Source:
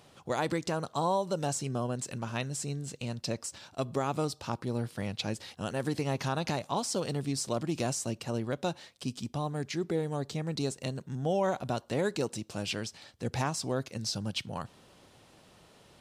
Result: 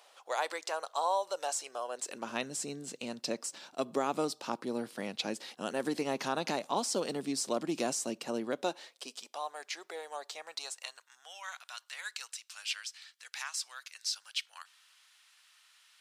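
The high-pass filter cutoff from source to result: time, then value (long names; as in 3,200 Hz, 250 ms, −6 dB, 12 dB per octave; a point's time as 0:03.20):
high-pass filter 24 dB per octave
0:01.86 570 Hz
0:02.31 220 Hz
0:08.49 220 Hz
0:09.44 650 Hz
0:10.37 650 Hz
0:11.39 1,400 Hz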